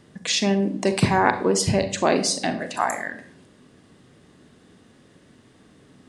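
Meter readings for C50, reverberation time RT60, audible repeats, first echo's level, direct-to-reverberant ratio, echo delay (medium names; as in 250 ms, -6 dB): 11.0 dB, 0.55 s, no echo, no echo, 8.5 dB, no echo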